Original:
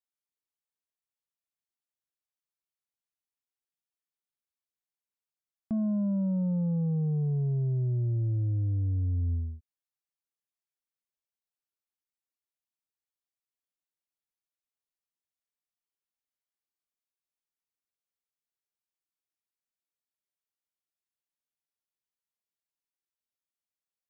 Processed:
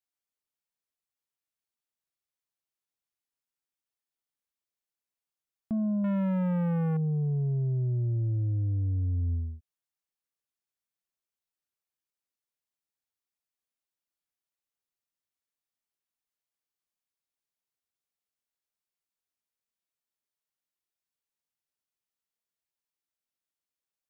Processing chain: 6.04–6.97 s: waveshaping leveller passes 2

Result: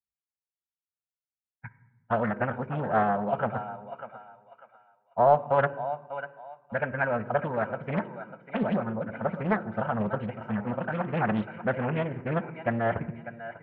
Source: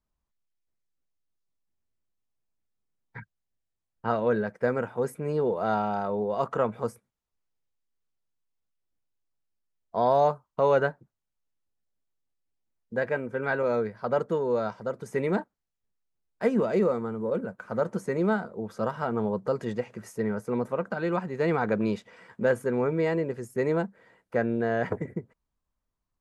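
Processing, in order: Chebyshev low-pass 2.8 kHz, order 4; gate with hold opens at -47 dBFS; high-pass 55 Hz 24 dB/octave; peaking EQ 470 Hz -8.5 dB 0.29 oct; time stretch by phase-locked vocoder 0.52×; thinning echo 596 ms, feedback 34%, high-pass 740 Hz, level -9 dB; reverberation RT60 1.1 s, pre-delay 4 ms, DRR 14 dB; loudspeaker Doppler distortion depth 0.48 ms

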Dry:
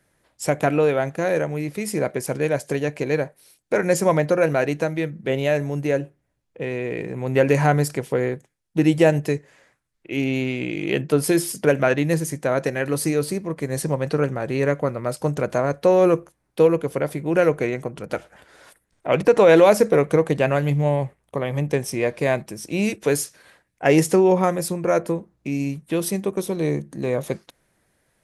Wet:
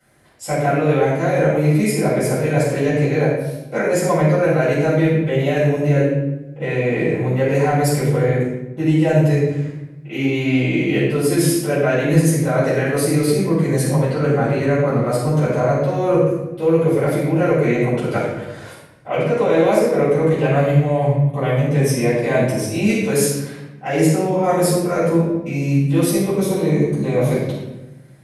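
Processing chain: high-pass 54 Hz; hum notches 60/120/180 Hz; reverse; compression 6:1, threshold -25 dBFS, peak gain reduction 15 dB; reverse; simulated room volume 410 m³, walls mixed, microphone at 7.1 m; trim -4 dB

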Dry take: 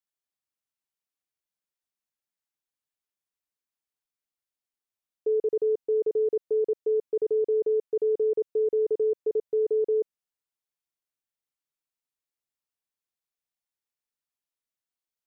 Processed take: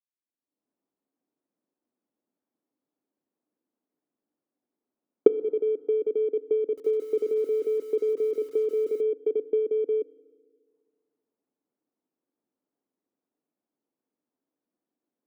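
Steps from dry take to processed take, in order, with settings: bit-reversed sample order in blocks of 16 samples; recorder AGC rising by 42 dB/s; waveshaping leveller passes 2; transient shaper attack +5 dB, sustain -12 dB; ladder band-pass 310 Hz, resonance 50%; FDN reverb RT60 2 s, low-frequency decay 1.05×, high-frequency decay 0.6×, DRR 17 dB; 6.62–9.01 s: bit-crushed delay 155 ms, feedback 35%, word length 8-bit, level -12 dB; trim +2 dB

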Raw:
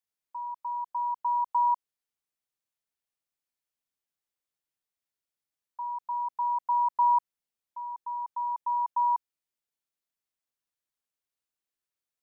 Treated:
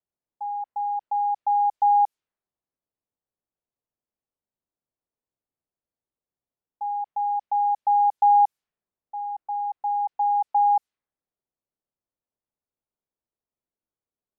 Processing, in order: tape speed -15%; level-controlled noise filter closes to 730 Hz, open at -25.5 dBFS; trim +6 dB

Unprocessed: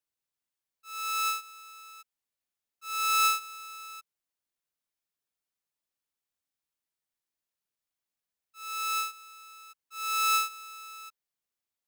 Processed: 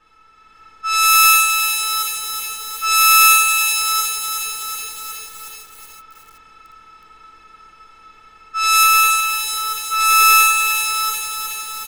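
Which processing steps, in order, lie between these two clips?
spectral levelling over time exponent 0.4; level-controlled noise filter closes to 1.5 kHz, open at -23.5 dBFS; treble shelf 2.4 kHz +9.5 dB, from 8.83 s +4 dB; level rider gain up to 7 dB; delay 505 ms -23 dB; reverberation RT60 0.35 s, pre-delay 4 ms, DRR -5.5 dB; bit-crushed delay 369 ms, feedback 80%, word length 5-bit, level -6.5 dB; trim -2 dB

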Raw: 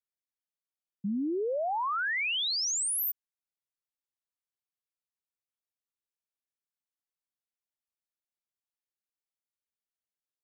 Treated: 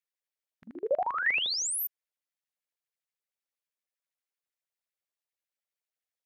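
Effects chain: LFO high-pass square 7.6 Hz 540–1900 Hz; granular stretch 0.6×, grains 23 ms

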